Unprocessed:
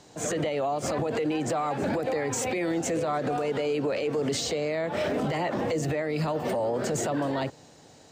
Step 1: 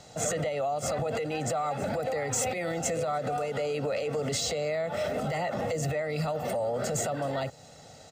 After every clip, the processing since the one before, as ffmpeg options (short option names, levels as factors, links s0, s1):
-filter_complex "[0:a]aecho=1:1:1.5:0.65,acrossover=split=6500[s0][s1];[s0]alimiter=limit=0.0631:level=0:latency=1:release=332[s2];[s2][s1]amix=inputs=2:normalize=0,volume=1.19"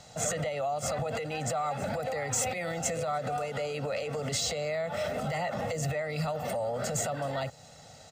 -af "equalizer=f=350:w=1.6:g=-8"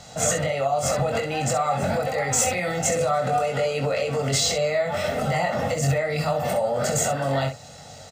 -af "aecho=1:1:22|66:0.631|0.398,volume=2.11"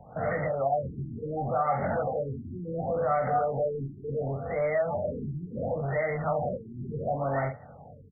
-filter_complex "[0:a]acrossover=split=550|1600[s0][s1][s2];[s0]asoftclip=type=hard:threshold=0.0422[s3];[s3][s1][s2]amix=inputs=3:normalize=0,afftfilt=real='re*lt(b*sr/1024,380*pow(2300/380,0.5+0.5*sin(2*PI*0.7*pts/sr)))':imag='im*lt(b*sr/1024,380*pow(2300/380,0.5+0.5*sin(2*PI*0.7*pts/sr)))':win_size=1024:overlap=0.75,volume=0.708"